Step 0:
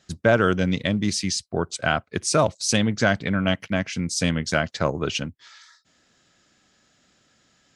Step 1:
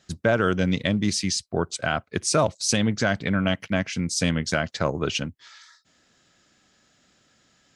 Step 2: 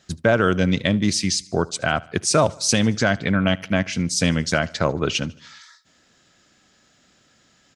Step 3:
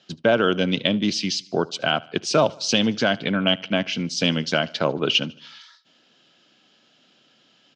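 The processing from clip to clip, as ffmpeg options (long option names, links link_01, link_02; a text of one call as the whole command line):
ffmpeg -i in.wav -af "alimiter=limit=-9dB:level=0:latency=1:release=104" out.wav
ffmpeg -i in.wav -af "aecho=1:1:75|150|225|300:0.0708|0.0375|0.0199|0.0105,volume=3.5dB" out.wav
ffmpeg -i in.wav -af "highpass=frequency=150:width=0.5412,highpass=frequency=150:width=1.3066,equalizer=frequency=180:width_type=q:width=4:gain=-4,equalizer=frequency=1200:width_type=q:width=4:gain=-3,equalizer=frequency=1900:width_type=q:width=4:gain=-7,equalizer=frequency=3000:width_type=q:width=4:gain=9,lowpass=frequency=5200:width=0.5412,lowpass=frequency=5200:width=1.3066" out.wav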